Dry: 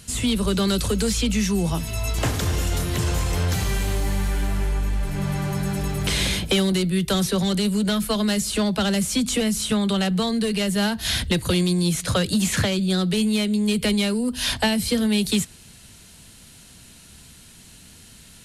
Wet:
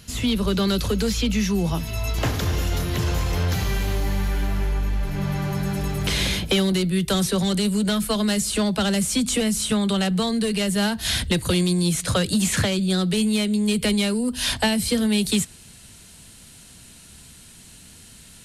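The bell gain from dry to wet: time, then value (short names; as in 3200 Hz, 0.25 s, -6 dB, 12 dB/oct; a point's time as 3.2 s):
bell 8500 Hz 0.35 oct
5.27 s -13.5 dB
5.97 s -5.5 dB
6.61 s -5.5 dB
7.2 s +3.5 dB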